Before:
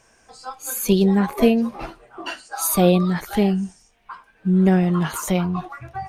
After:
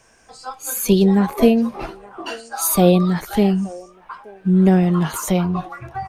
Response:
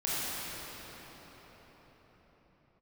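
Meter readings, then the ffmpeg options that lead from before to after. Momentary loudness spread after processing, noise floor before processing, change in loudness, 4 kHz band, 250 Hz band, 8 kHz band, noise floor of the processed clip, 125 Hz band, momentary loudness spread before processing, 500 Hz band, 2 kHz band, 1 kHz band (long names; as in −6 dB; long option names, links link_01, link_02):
17 LU, −58 dBFS, +2.5 dB, +1.5 dB, +2.5 dB, +2.5 dB, −51 dBFS, +2.5 dB, 17 LU, +2.5 dB, 0.0 dB, +2.0 dB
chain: -filter_complex "[0:a]acrossover=split=350|1300|2800[link_01][link_02][link_03][link_04];[link_02]aecho=1:1:875:0.15[link_05];[link_03]alimiter=level_in=10.5dB:limit=-24dB:level=0:latency=1,volume=-10.5dB[link_06];[link_01][link_05][link_06][link_04]amix=inputs=4:normalize=0,volume=2.5dB"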